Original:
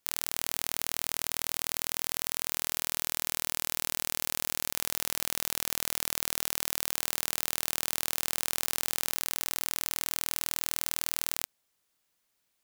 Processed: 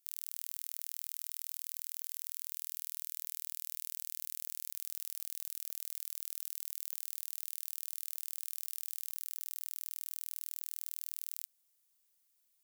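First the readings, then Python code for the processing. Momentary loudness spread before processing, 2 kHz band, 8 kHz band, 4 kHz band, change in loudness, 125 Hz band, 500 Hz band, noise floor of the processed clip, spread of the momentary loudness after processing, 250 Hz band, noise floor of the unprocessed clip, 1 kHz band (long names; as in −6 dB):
0 LU, −23.0 dB, −11.5 dB, −17.0 dB, −9.0 dB, below −40 dB, below −30 dB, −75 dBFS, 0 LU, below −40 dB, −77 dBFS, below −25 dB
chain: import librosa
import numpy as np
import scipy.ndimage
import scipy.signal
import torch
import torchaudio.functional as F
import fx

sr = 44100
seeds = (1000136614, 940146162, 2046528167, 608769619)

y = librosa.effects.preemphasis(x, coef=0.8, zi=[0.0])
y = np.clip(10.0 ** (15.5 / 20.0) * y, -1.0, 1.0) / 10.0 ** (15.5 / 20.0)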